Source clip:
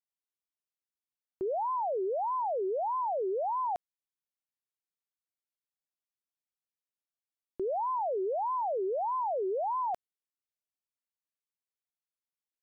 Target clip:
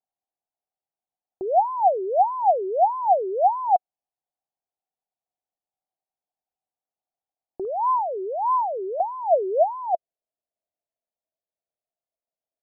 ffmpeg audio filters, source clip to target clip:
-af "asetnsamples=n=441:p=0,asendcmd='7.65 lowpass f 1200;9 lowpass f 660',lowpass=f=750:t=q:w=7.3,volume=1dB"

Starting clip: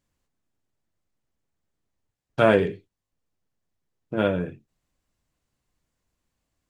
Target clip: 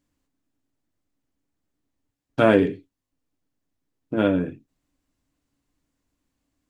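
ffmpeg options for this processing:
-af "equalizer=f=280:w=4.8:g=14"

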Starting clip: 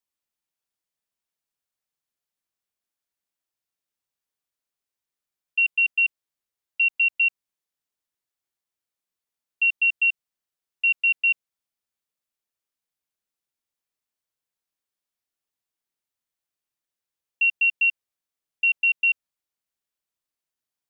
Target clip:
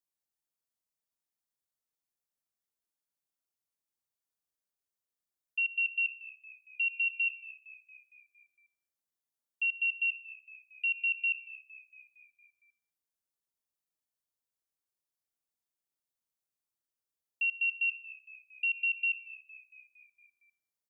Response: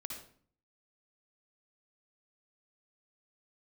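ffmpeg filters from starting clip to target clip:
-filter_complex "[0:a]equalizer=f=2.6k:w=0.82:g=-5.5,asplit=7[a][b][c][d][e][f][g];[b]adelay=230,afreqshift=-65,volume=-18.5dB[h];[c]adelay=460,afreqshift=-130,volume=-22.5dB[i];[d]adelay=690,afreqshift=-195,volume=-26.5dB[j];[e]adelay=920,afreqshift=-260,volume=-30.5dB[k];[f]adelay=1150,afreqshift=-325,volume=-34.6dB[l];[g]adelay=1380,afreqshift=-390,volume=-38.6dB[m];[a][h][i][j][k][l][m]amix=inputs=7:normalize=0,asplit=2[n][o];[1:a]atrim=start_sample=2205,highshelf=f=2.5k:g=11.5[p];[o][p]afir=irnorm=-1:irlink=0,volume=-14.5dB[q];[n][q]amix=inputs=2:normalize=0,volume=-6dB"

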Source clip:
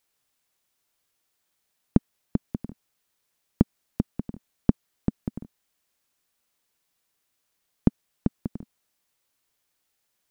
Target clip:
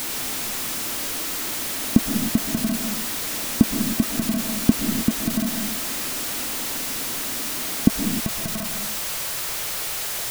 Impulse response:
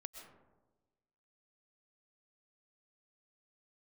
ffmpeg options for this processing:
-filter_complex "[0:a]aeval=exprs='val(0)+0.5*0.106*sgn(val(0))':c=same,asetnsamples=n=441:p=0,asendcmd='7.88 equalizer g -5.5',equalizer=f=260:t=o:w=0.59:g=10[a];[1:a]atrim=start_sample=2205,afade=t=out:st=0.37:d=0.01,atrim=end_sample=16758[b];[a][b]afir=irnorm=-1:irlink=0,volume=3dB"

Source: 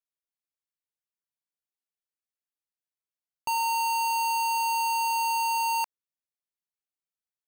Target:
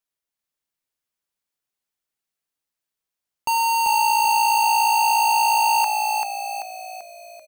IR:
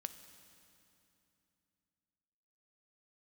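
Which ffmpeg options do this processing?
-filter_complex "[0:a]asplit=7[a][b][c][d][e][f][g];[b]adelay=388,afreqshift=-57,volume=-3.5dB[h];[c]adelay=776,afreqshift=-114,volume=-9.9dB[i];[d]adelay=1164,afreqshift=-171,volume=-16.3dB[j];[e]adelay=1552,afreqshift=-228,volume=-22.6dB[k];[f]adelay=1940,afreqshift=-285,volume=-29dB[l];[g]adelay=2328,afreqshift=-342,volume=-35.4dB[m];[a][h][i][j][k][l][m]amix=inputs=7:normalize=0,volume=6.5dB"

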